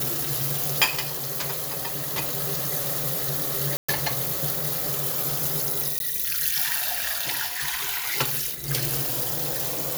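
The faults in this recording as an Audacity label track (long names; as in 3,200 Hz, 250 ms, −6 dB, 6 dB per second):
3.770000	3.880000	drop-out 115 ms
5.990000	6.000000	drop-out 12 ms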